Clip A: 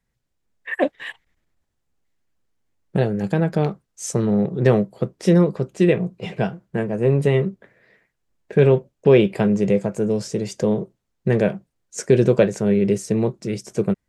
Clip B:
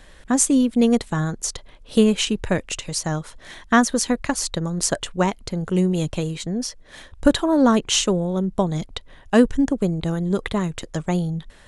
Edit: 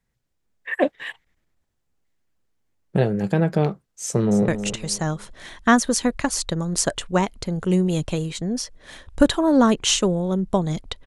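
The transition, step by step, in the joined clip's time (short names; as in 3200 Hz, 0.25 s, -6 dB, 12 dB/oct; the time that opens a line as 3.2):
clip A
4.04–4.48 echo throw 0.27 s, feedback 30%, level -10.5 dB
4.48 switch to clip B from 2.53 s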